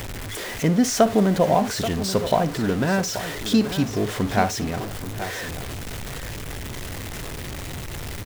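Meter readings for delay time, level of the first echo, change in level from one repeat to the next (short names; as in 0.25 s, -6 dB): 58 ms, -16.0 dB, no steady repeat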